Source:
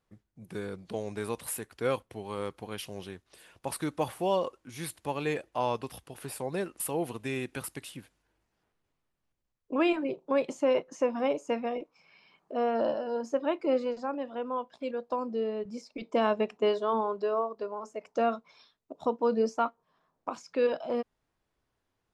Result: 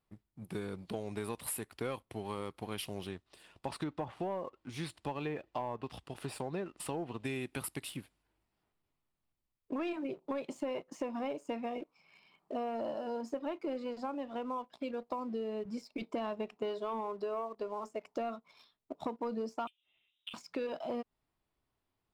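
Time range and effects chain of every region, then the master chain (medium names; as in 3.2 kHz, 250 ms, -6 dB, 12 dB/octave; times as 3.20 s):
3.07–7.25 s: low-pass 8.4 kHz + band-stop 2.2 kHz, Q 20 + low-pass that closes with the level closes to 1.4 kHz, closed at -25 dBFS
19.67–20.34 s: compression 8:1, threshold -42 dBFS + frequency inversion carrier 3.8 kHz
whole clip: graphic EQ with 31 bands 500 Hz -5 dB, 1.6 kHz -5 dB, 6.3 kHz -8 dB; waveshaping leveller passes 1; compression, threshold -33 dBFS; trim -1.5 dB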